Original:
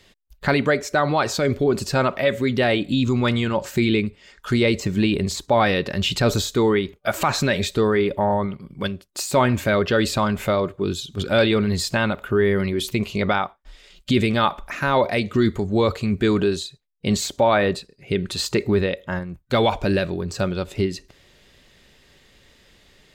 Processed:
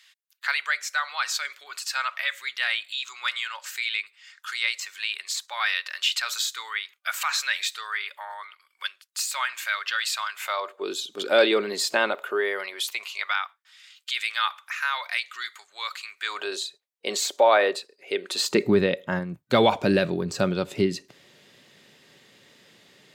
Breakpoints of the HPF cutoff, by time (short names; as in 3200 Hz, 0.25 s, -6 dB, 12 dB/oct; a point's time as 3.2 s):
HPF 24 dB/oct
10.36 s 1300 Hz
10.97 s 340 Hz
12.04 s 340 Hz
13.39 s 1300 Hz
16.18 s 1300 Hz
16.59 s 410 Hz
18.27 s 410 Hz
18.68 s 130 Hz